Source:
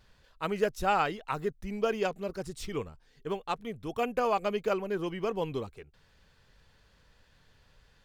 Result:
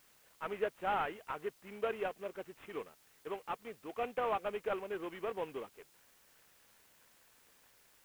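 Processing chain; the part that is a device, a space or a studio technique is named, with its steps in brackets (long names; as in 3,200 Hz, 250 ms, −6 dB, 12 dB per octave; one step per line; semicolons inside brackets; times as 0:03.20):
army field radio (band-pass filter 360–3,200 Hz; variable-slope delta modulation 16 kbit/s; white noise bed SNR 26 dB)
level −5 dB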